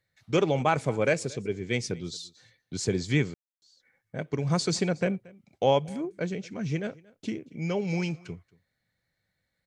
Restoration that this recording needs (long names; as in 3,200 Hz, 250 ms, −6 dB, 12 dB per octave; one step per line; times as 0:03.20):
ambience match 0:03.34–0:03.62
echo removal 229 ms −24 dB